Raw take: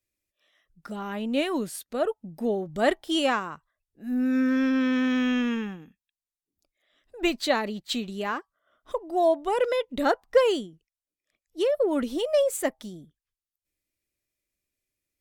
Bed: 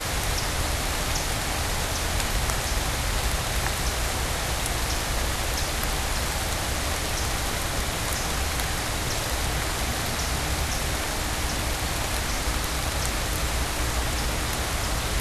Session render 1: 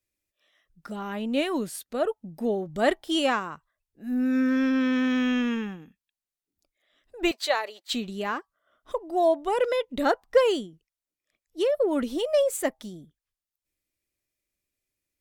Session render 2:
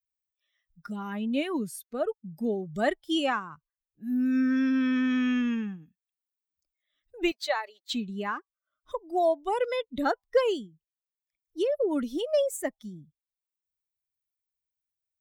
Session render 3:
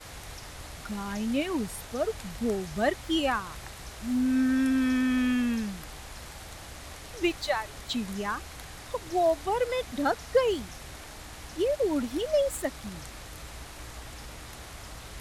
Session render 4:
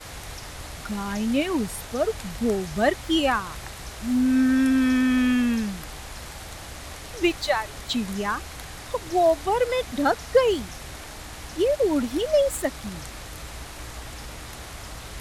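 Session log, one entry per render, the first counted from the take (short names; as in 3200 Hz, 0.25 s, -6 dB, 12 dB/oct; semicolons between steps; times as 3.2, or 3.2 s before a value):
7.31–7.93 HPF 500 Hz 24 dB/oct
per-bin expansion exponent 1.5; three-band squash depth 40%
add bed -16.5 dB
gain +5 dB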